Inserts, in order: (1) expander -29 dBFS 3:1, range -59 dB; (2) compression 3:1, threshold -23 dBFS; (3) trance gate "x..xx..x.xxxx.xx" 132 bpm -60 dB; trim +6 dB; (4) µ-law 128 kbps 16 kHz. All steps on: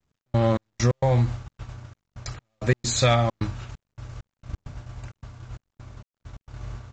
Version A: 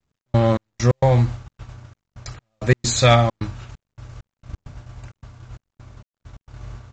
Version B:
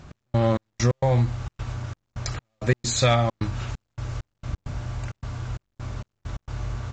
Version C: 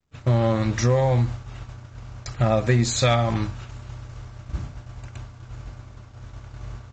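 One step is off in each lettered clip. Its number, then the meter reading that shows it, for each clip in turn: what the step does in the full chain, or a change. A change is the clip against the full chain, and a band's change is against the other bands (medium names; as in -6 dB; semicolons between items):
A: 2, crest factor change +2.0 dB; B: 1, momentary loudness spread change -6 LU; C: 3, 8 kHz band -1.5 dB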